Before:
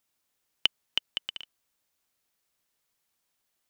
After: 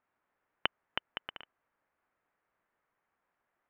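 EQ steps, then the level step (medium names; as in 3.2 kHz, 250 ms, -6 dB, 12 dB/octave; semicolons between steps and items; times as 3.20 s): low-pass 1.8 kHz 24 dB/octave; bass shelf 330 Hz -8.5 dB; +7.5 dB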